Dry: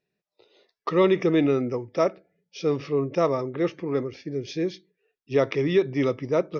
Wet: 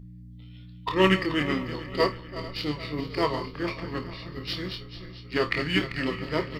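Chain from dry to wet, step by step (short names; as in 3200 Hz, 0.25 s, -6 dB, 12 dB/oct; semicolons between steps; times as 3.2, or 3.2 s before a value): regenerating reverse delay 0.22 s, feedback 72%, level -10 dB; tilt shelf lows -10 dB, about 1300 Hz; buzz 60 Hz, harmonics 5, -40 dBFS -5 dB/oct; in parallel at -4.5 dB: backlash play -24.5 dBFS; on the sum: doubler 27 ms -8 dB; flutter echo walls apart 4.5 m, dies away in 0.21 s; formant shift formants -3 st; upward expander 1.5:1, over -24 dBFS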